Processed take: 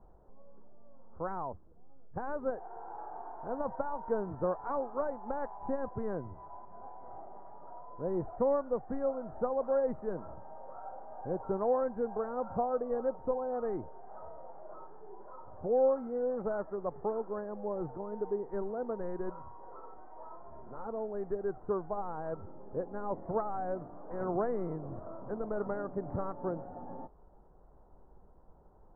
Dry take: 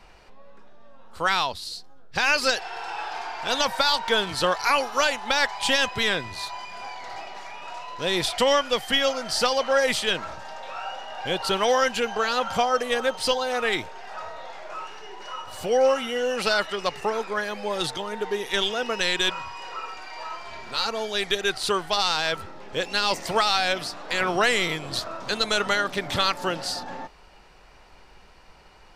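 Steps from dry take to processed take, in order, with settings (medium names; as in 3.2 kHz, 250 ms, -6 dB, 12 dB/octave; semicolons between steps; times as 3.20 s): Gaussian low-pass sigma 10 samples; trim -4.5 dB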